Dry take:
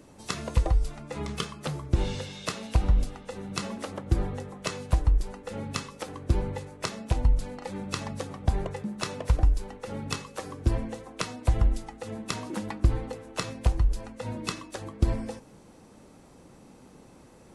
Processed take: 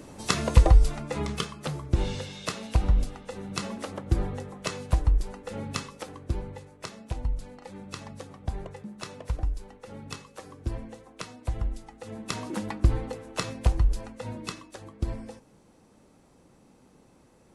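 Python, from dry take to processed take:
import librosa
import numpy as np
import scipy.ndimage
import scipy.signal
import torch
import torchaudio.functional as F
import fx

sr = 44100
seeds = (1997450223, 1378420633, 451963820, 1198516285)

y = fx.gain(x, sr, db=fx.line((0.95, 7.0), (1.49, 0.0), (5.84, 0.0), (6.47, -7.0), (11.78, -7.0), (12.43, 1.0), (13.97, 1.0), (14.74, -6.0)))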